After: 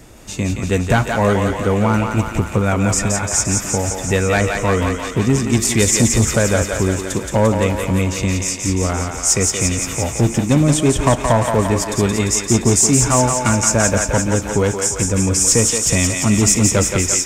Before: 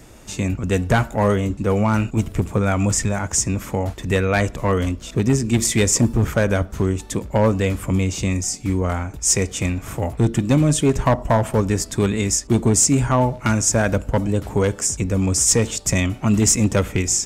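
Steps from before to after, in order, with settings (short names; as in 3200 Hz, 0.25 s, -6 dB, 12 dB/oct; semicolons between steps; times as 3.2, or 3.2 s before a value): on a send: thinning echo 0.173 s, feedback 74%, high-pass 490 Hz, level -3.5 dB; on the sum: gain +2 dB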